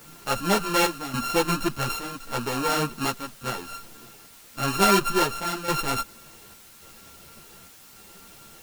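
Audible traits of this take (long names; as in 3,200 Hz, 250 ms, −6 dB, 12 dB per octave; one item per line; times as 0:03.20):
a buzz of ramps at a fixed pitch in blocks of 32 samples
chopped level 0.88 Hz, depth 65%, duty 75%
a quantiser's noise floor 8 bits, dither triangular
a shimmering, thickened sound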